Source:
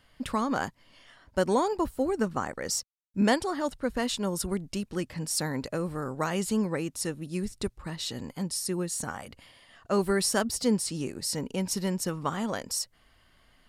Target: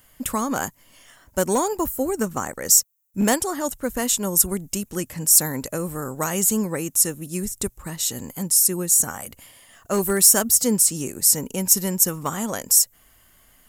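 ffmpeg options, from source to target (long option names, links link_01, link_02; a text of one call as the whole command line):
ffmpeg -i in.wav -af "aeval=exprs='clip(val(0),-1,0.1)':channel_layout=same,equalizer=frequency=9400:width=3:gain=-10,aexciter=amount=6.8:drive=8.5:freq=6600,volume=3.5dB" out.wav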